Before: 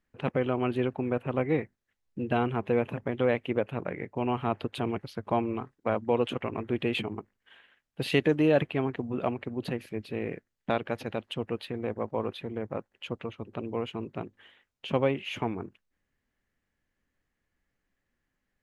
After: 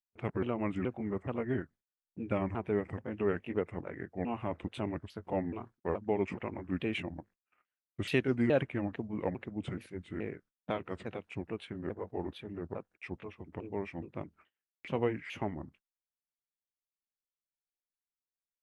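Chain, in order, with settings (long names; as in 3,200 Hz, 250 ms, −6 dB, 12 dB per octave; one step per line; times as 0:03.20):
pitch shifter swept by a sawtooth −5.5 semitones, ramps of 425 ms
noise gate −54 dBFS, range −28 dB
level −4.5 dB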